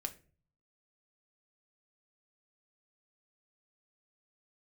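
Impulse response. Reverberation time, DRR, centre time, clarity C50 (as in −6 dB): non-exponential decay, 3.5 dB, 6 ms, 16.5 dB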